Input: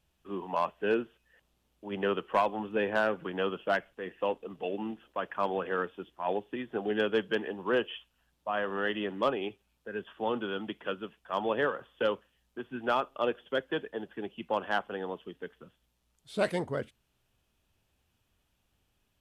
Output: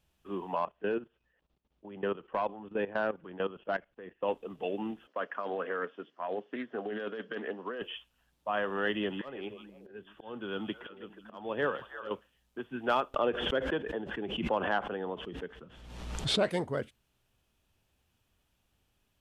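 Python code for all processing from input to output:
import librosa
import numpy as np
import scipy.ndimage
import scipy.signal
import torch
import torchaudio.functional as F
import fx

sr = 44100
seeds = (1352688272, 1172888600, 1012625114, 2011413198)

y = fx.chain(x, sr, fx.lowpass(hz=5700.0, slope=24),
    fx.high_shelf(hz=2400.0, db=-8.5),
    fx.level_steps(step_db=15), at=(0.56, 4.28))
y = fx.chain(y, sr, fx.over_compress(threshold_db=-32.0, ratio=-1.0),
    fx.cabinet(low_hz=190.0, low_slope=24, high_hz=5200.0, hz=(190.0, 340.0, 870.0, 2500.0, 3700.0), db=(-6, -8, -8, -6, -10)),
    fx.doppler_dist(depth_ms=0.1), at=(5.07, 7.82))
y = fx.chain(y, sr, fx.low_shelf(hz=180.0, db=4.5),
    fx.auto_swell(attack_ms=433.0),
    fx.echo_stepped(ms=160, hz=3500.0, octaves=-1.4, feedback_pct=70, wet_db=-6), at=(8.87, 12.11))
y = fx.chain(y, sr, fx.lowpass(hz=7500.0, slope=12),
    fx.high_shelf(hz=3000.0, db=-9.0),
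    fx.pre_swell(db_per_s=43.0), at=(13.14, 16.51))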